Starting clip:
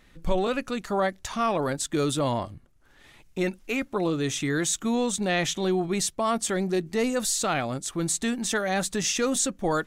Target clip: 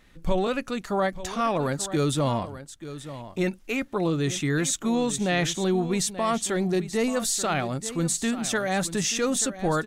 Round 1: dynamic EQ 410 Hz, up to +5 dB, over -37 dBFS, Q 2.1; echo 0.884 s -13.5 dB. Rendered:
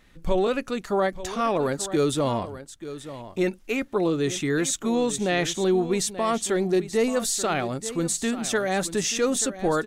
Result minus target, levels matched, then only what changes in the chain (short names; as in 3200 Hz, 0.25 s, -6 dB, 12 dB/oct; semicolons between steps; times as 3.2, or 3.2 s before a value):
125 Hz band -4.5 dB
change: dynamic EQ 150 Hz, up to +5 dB, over -37 dBFS, Q 2.1